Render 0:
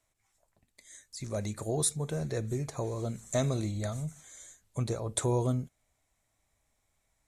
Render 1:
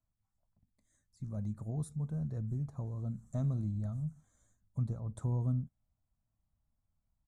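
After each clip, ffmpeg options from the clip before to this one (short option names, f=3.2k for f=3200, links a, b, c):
-af "firequalizer=gain_entry='entry(210,0);entry(370,-17);entry(790,-13);entry(1300,-13);entry(2100,-28);entry(8600,-23)':delay=0.05:min_phase=1,volume=-1dB"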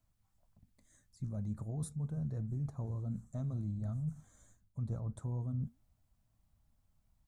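-af "areverse,acompressor=threshold=-43dB:ratio=6,areverse,flanger=delay=0.4:depth=6.3:regen=-83:speed=1.5:shape=sinusoidal,volume=12dB"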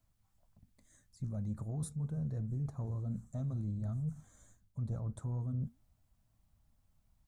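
-af "asoftclip=type=tanh:threshold=-29dB,volume=1.5dB"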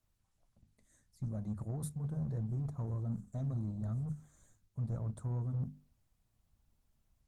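-af "aeval=exprs='0.0355*(cos(1*acos(clip(val(0)/0.0355,-1,1)))-cos(1*PI/2))+0.00126*(cos(7*acos(clip(val(0)/0.0355,-1,1)))-cos(7*PI/2))+0.000282*(cos(8*acos(clip(val(0)/0.0355,-1,1)))-cos(8*PI/2))':c=same,bandreject=f=50:t=h:w=6,bandreject=f=100:t=h:w=6,bandreject=f=150:t=h:w=6,bandreject=f=200:t=h:w=6,bandreject=f=250:t=h:w=6,volume=1dB" -ar 48000 -c:a libopus -b:a 20k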